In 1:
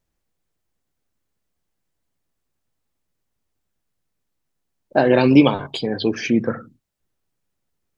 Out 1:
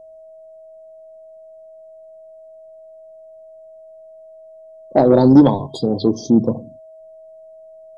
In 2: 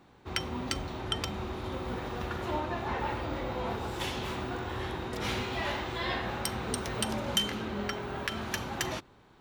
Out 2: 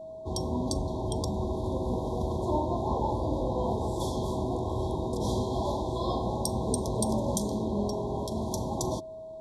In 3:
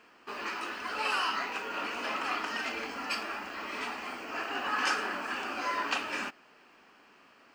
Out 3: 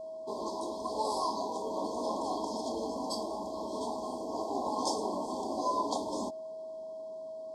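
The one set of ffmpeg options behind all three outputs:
ffmpeg -i in.wav -af "adynamicequalizer=threshold=0.0141:dfrequency=450:dqfactor=2.4:tfrequency=450:tqfactor=2.4:attack=5:release=100:ratio=0.375:range=2:mode=cutabove:tftype=bell,aeval=exprs='val(0)+0.00631*sin(2*PI*640*n/s)':channel_layout=same,afftfilt=real='re*(1-between(b*sr/4096,1100,3200))':imag='im*(1-between(b*sr/4096,1100,3200))':win_size=4096:overlap=0.75,lowpass=frequency=11000:width=0.5412,lowpass=frequency=11000:width=1.3066,equalizer=frequency=2700:width=0.74:gain=-14,acontrast=63" out.wav

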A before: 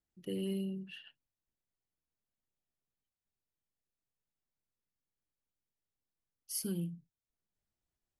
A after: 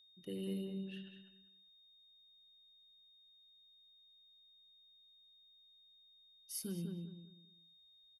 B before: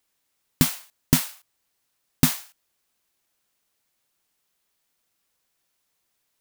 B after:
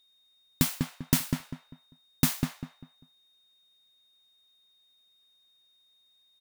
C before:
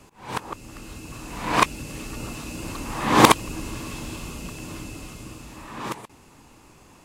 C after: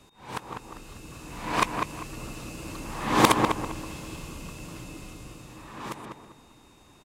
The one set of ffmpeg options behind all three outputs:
ffmpeg -i in.wav -filter_complex "[0:a]asplit=2[link_01][link_02];[link_02]adelay=198,lowpass=frequency=1900:poles=1,volume=-4dB,asplit=2[link_03][link_04];[link_04]adelay=198,lowpass=frequency=1900:poles=1,volume=0.31,asplit=2[link_05][link_06];[link_06]adelay=198,lowpass=frequency=1900:poles=1,volume=0.31,asplit=2[link_07][link_08];[link_08]adelay=198,lowpass=frequency=1900:poles=1,volume=0.31[link_09];[link_01][link_03][link_05][link_07][link_09]amix=inputs=5:normalize=0,aeval=exprs='val(0)+0.00126*sin(2*PI*3700*n/s)':channel_layout=same,volume=-5.5dB" out.wav

